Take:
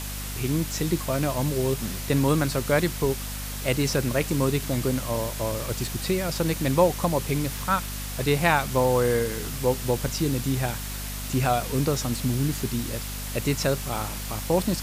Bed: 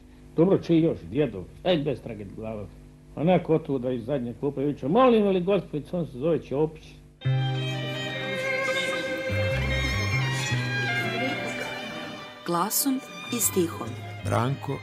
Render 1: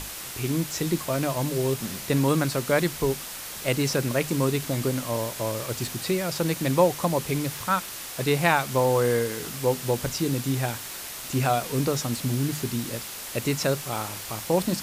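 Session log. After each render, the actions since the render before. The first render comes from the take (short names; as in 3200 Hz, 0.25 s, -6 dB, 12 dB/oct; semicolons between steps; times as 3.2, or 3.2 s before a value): notches 50/100/150/200/250 Hz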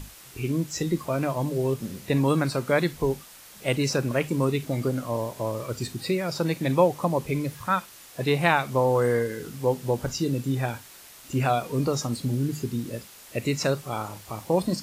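noise print and reduce 11 dB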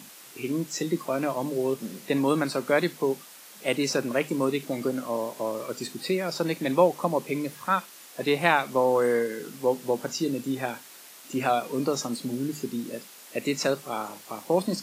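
HPF 190 Hz 24 dB/oct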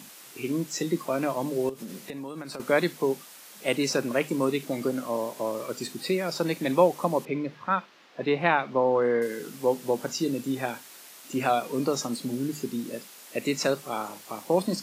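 1.69–2.6 compressor 12:1, threshold -33 dBFS; 7.25–9.22 air absorption 240 m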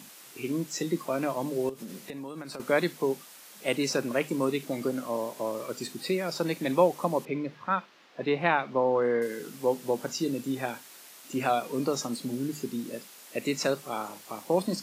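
gain -2 dB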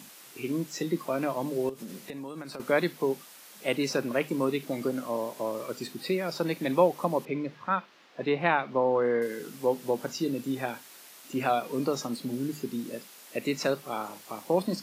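dynamic EQ 7600 Hz, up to -6 dB, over -52 dBFS, Q 1.3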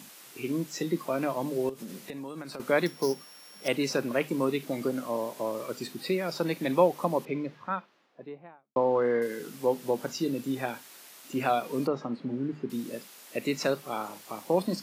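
2.86–3.68 sample sorter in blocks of 8 samples; 7.16–8.76 studio fade out; 11.87–12.7 LPF 1900 Hz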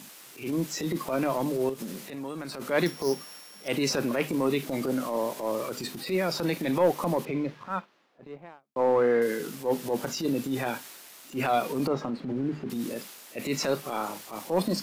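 transient shaper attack -10 dB, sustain +3 dB; sample leveller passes 1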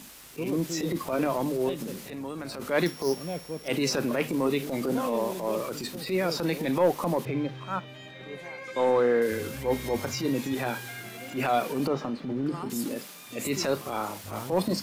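add bed -14 dB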